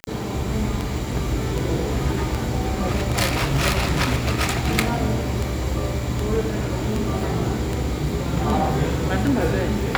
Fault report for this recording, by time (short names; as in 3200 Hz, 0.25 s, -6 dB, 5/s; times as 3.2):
tick 78 rpm -11 dBFS